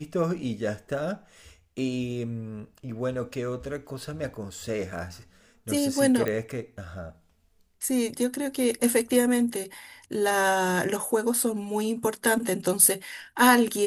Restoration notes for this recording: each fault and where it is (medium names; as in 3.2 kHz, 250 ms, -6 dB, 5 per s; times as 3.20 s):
6.28 s: pop -15 dBFS